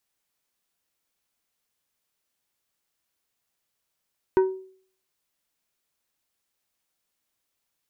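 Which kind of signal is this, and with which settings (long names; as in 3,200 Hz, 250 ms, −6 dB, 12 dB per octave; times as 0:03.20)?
struck glass plate, lowest mode 378 Hz, decay 0.52 s, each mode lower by 9.5 dB, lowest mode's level −13 dB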